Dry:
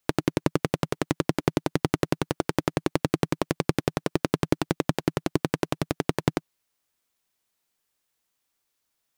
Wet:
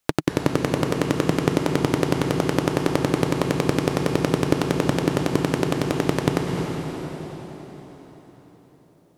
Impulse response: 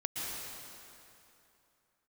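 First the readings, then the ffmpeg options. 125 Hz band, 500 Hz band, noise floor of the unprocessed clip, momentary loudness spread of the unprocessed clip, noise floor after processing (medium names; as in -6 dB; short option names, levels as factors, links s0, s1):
+5.5 dB, +6.0 dB, -78 dBFS, 2 LU, -55 dBFS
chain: -filter_complex "[0:a]asplit=2[s0][s1];[1:a]atrim=start_sample=2205,asetrate=26019,aresample=44100[s2];[s1][s2]afir=irnorm=-1:irlink=0,volume=0.562[s3];[s0][s3]amix=inputs=2:normalize=0,volume=0.841"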